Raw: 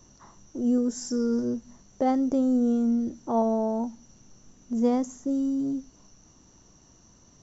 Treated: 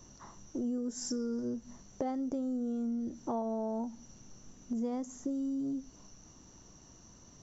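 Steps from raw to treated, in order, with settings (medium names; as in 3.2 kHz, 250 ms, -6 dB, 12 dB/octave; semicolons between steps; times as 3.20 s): compression 6:1, threshold -33 dBFS, peak gain reduction 14 dB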